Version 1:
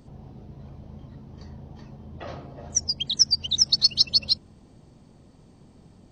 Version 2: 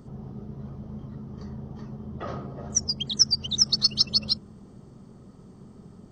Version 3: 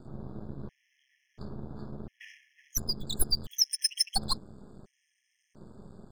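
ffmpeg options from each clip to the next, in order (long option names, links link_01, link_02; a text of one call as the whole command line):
ffmpeg -i in.wav -af "equalizer=frequency=125:width_type=o:width=0.33:gain=6,equalizer=frequency=200:width_type=o:width=0.33:gain=10,equalizer=frequency=400:width_type=o:width=0.33:gain=8,equalizer=frequency=1250:width_type=o:width=0.33:gain=9,equalizer=frequency=2500:width_type=o:width=0.33:gain=-7,equalizer=frequency=4000:width_type=o:width=0.33:gain=-5" out.wav
ffmpeg -i in.wav -af "aeval=exprs='max(val(0),0)':channel_layout=same,afftfilt=real='re*gt(sin(2*PI*0.72*pts/sr)*(1-2*mod(floor(b*sr/1024/1700),2)),0)':imag='im*gt(sin(2*PI*0.72*pts/sr)*(1-2*mod(floor(b*sr/1024/1700),2)),0)':win_size=1024:overlap=0.75,volume=1.5dB" out.wav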